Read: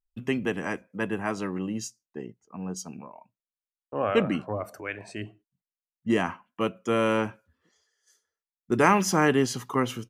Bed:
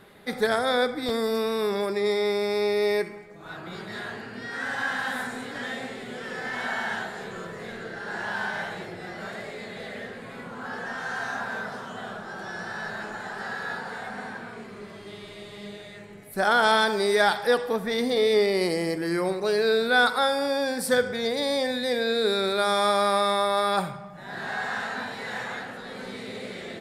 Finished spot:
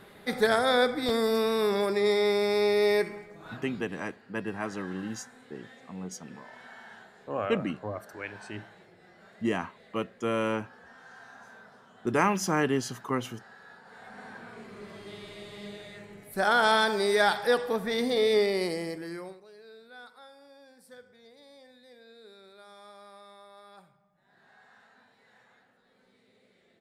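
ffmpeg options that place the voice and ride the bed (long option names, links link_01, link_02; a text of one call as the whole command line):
ffmpeg -i stem1.wav -i stem2.wav -filter_complex "[0:a]adelay=3350,volume=-4.5dB[link_01];[1:a]volume=16.5dB,afade=type=out:start_time=3.19:duration=0.67:silence=0.112202,afade=type=in:start_time=13.82:duration=1.15:silence=0.149624,afade=type=out:start_time=18.36:duration=1.09:silence=0.0501187[link_02];[link_01][link_02]amix=inputs=2:normalize=0" out.wav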